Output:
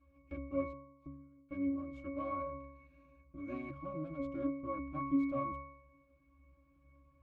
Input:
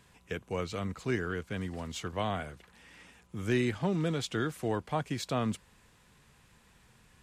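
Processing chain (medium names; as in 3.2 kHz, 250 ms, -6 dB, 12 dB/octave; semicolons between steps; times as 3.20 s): comb filter that takes the minimum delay 3.6 ms; 0.67–1.49 s: inverted gate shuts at -32 dBFS, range -32 dB; 2.39–3.54 s: rippled EQ curve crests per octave 1.5, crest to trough 8 dB; 4.08–4.95 s: hysteresis with a dead band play -41 dBFS; pitch-class resonator C#, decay 0.79 s; trim +16 dB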